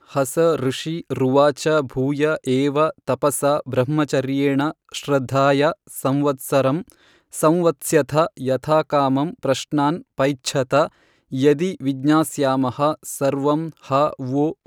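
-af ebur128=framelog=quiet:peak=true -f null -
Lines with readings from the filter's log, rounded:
Integrated loudness:
  I:         -20.1 LUFS
  Threshold: -30.2 LUFS
Loudness range:
  LRA:         1.1 LU
  Threshold: -40.2 LUFS
  LRA low:   -20.8 LUFS
  LRA high:  -19.7 LUFS
True peak:
  Peak:       -3.3 dBFS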